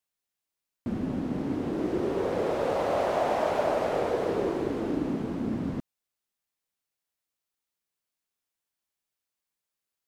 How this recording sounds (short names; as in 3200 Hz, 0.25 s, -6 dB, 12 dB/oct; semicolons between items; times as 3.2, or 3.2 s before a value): noise floor -88 dBFS; spectral tilt -4.0 dB/oct